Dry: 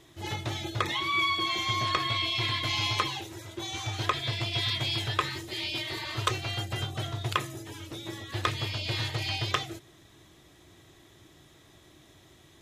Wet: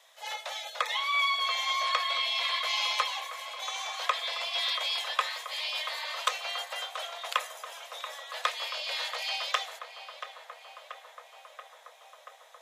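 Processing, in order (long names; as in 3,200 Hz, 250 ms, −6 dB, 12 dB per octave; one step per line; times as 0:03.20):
Butterworth high-pass 490 Hz 96 dB per octave
feedback echo with a low-pass in the loop 682 ms, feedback 82%, low-pass 2,500 Hz, level −10.5 dB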